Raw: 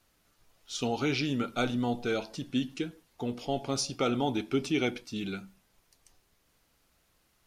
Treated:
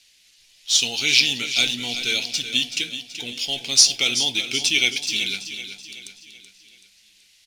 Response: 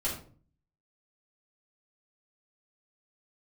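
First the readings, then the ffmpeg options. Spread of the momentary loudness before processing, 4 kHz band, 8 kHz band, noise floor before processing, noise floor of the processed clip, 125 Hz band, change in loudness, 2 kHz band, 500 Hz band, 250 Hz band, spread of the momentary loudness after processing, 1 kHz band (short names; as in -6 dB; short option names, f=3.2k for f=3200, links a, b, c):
9 LU, +20.5 dB, +20.5 dB, -71 dBFS, -57 dBFS, -5.5 dB, +12.5 dB, +14.5 dB, -5.5 dB, -5.5 dB, 16 LU, -5.5 dB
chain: -filter_complex "[0:a]aexciter=amount=9.7:drive=9.5:freq=2k,adynamicsmooth=sensitivity=3.5:basefreq=5.7k,asplit=2[a][b];[b]aecho=0:1:379|758|1137|1516|1895:0.299|0.14|0.0659|0.031|0.0146[c];[a][c]amix=inputs=2:normalize=0,volume=-6dB"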